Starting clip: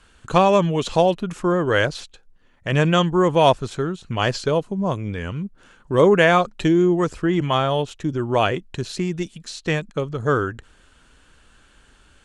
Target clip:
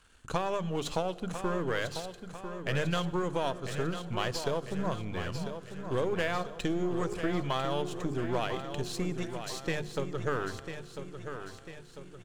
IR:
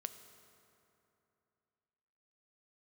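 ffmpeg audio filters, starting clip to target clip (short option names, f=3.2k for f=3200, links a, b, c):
-filter_complex "[0:a]aeval=exprs='if(lt(val(0),0),0.447*val(0),val(0))':c=same,bandreject=f=50:t=h:w=6,bandreject=f=100:t=h:w=6,bandreject=f=150:t=h:w=6,bandreject=f=200:t=h:w=6,bandreject=f=250:t=h:w=6,bandreject=f=300:t=h:w=6,bandreject=f=350:t=h:w=6,acompressor=threshold=-21dB:ratio=10,aecho=1:1:997|1994|2991|3988|4985|5982:0.355|0.185|0.0959|0.0499|0.0259|0.0135,asplit=2[a][b];[1:a]atrim=start_sample=2205,asetrate=48510,aresample=44100,highshelf=f=5.3k:g=10[c];[b][c]afir=irnorm=-1:irlink=0,volume=-2dB[d];[a][d]amix=inputs=2:normalize=0,volume=-9dB"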